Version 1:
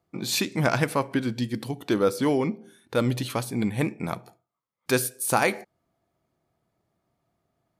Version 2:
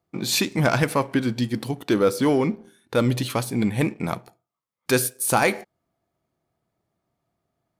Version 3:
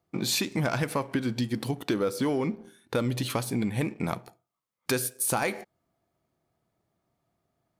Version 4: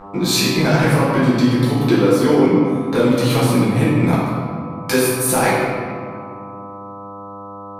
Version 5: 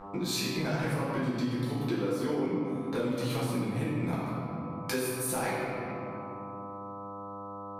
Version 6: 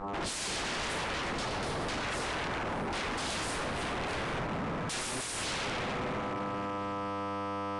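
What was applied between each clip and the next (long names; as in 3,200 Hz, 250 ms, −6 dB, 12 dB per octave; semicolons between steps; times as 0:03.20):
leveller curve on the samples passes 1
downward compressor 4 to 1, threshold −25 dBFS, peak gain reduction 9.5 dB
hum with harmonics 100 Hz, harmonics 13, −45 dBFS 0 dB per octave; convolution reverb RT60 2.1 s, pre-delay 6 ms, DRR −9.5 dB; level +2.5 dB
downward compressor 2 to 1, threshold −27 dBFS, peak gain reduction 10 dB; level −7.5 dB
wave folding −36.5 dBFS; downsampling to 22,050 Hz; level +7 dB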